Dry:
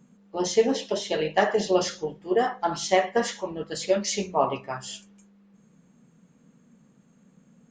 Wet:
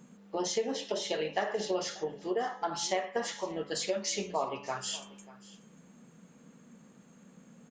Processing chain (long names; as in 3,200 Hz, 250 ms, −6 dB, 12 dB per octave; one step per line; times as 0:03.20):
low-shelf EQ 180 Hz −9.5 dB
hum removal 142.5 Hz, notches 26
downward compressor 3 to 1, threshold −39 dBFS, peak gain reduction 16.5 dB
on a send: single-tap delay 589 ms −19.5 dB
on the sum: level +5.5 dB